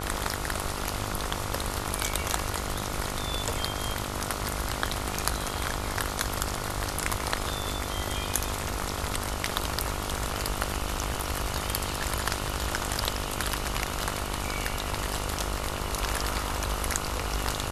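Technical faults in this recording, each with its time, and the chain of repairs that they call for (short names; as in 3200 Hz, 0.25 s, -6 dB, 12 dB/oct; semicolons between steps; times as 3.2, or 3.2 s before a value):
buzz 50 Hz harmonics 29 -36 dBFS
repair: de-hum 50 Hz, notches 29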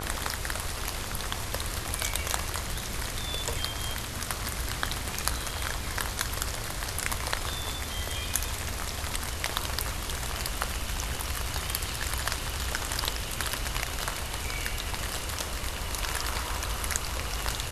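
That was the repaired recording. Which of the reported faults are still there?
none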